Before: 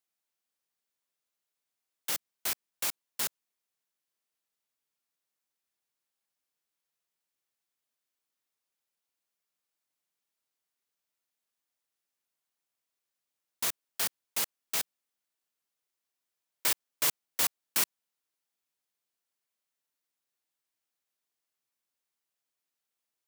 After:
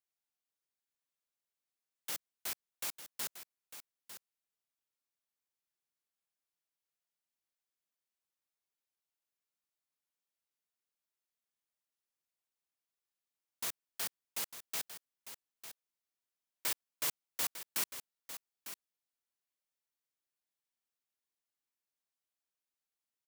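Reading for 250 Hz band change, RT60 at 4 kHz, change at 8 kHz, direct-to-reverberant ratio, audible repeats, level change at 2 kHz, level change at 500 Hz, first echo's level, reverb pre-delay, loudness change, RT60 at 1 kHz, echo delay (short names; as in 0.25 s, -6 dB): -7.0 dB, none, -7.0 dB, none, 1, -7.0 dB, -7.0 dB, -11.5 dB, none, -8.0 dB, none, 0.901 s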